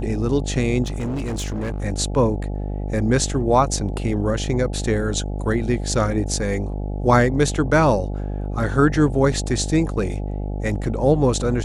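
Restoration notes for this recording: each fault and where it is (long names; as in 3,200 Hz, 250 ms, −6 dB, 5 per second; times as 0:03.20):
mains buzz 50 Hz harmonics 17 −26 dBFS
0:00.83–0:01.83: clipping −22 dBFS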